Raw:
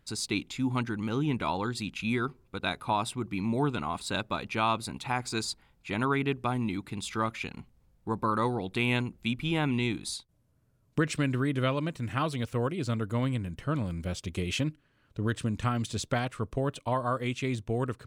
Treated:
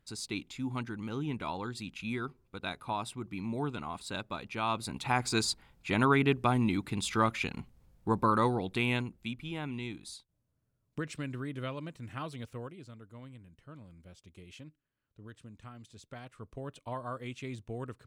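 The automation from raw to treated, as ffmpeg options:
-af "volume=13dB,afade=t=in:st=4.59:d=0.66:silence=0.354813,afade=t=out:st=8.11:d=1.31:silence=0.237137,afade=t=out:st=12.42:d=0.49:silence=0.316228,afade=t=in:st=16.02:d=0.93:silence=0.298538"

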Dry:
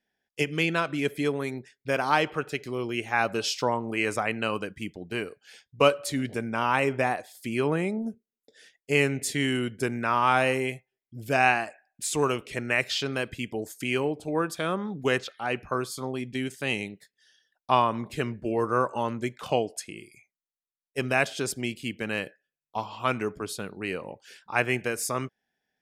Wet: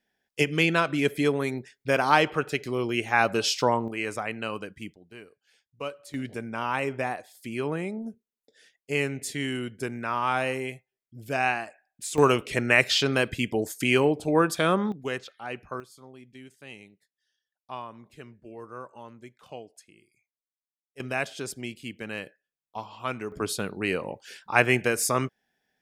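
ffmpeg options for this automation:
-af "asetnsamples=n=441:p=0,asendcmd='3.88 volume volume -4dB;4.94 volume volume -14.5dB;6.14 volume volume -4dB;12.18 volume volume 5.5dB;14.92 volume volume -6.5dB;15.8 volume volume -16dB;21 volume volume -5dB;23.32 volume volume 4.5dB',volume=3dB"

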